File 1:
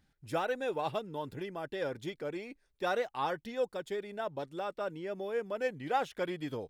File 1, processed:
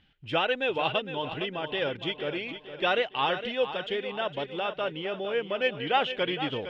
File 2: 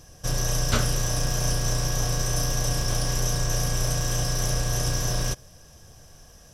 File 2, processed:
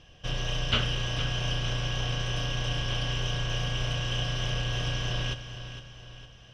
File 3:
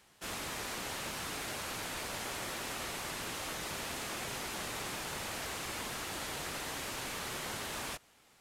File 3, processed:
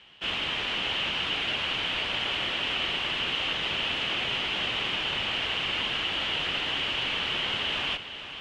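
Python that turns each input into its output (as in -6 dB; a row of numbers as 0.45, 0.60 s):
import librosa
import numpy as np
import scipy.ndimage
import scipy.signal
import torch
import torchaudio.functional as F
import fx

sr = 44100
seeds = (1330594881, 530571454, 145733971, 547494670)

p1 = fx.lowpass_res(x, sr, hz=3000.0, q=6.9)
p2 = p1 + fx.echo_feedback(p1, sr, ms=459, feedback_pct=46, wet_db=-11, dry=0)
y = p2 * 10.0 ** (-30 / 20.0) / np.sqrt(np.mean(np.square(p2)))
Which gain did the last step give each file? +4.5, -5.5, +4.5 dB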